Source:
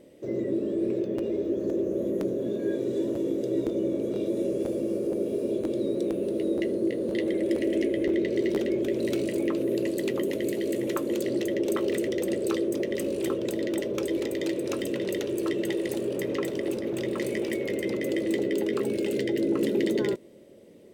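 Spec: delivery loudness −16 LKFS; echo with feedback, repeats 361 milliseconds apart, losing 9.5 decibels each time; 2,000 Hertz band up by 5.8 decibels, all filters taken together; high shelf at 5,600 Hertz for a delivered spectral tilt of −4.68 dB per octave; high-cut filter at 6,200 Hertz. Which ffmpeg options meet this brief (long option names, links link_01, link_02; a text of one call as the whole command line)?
ffmpeg -i in.wav -af "lowpass=6200,equalizer=frequency=2000:width_type=o:gain=5.5,highshelf=frequency=5600:gain=6,aecho=1:1:361|722|1083|1444:0.335|0.111|0.0365|0.012,volume=11.5dB" out.wav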